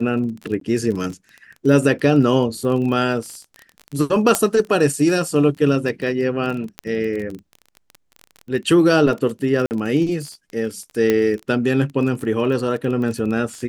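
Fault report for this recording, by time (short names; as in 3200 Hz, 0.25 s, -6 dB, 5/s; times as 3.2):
crackle 22/s -27 dBFS
0.6–0.61 gap 13 ms
4.35 pop -1 dBFS
6.79 pop -11 dBFS
9.66–9.71 gap 49 ms
11.1 pop -5 dBFS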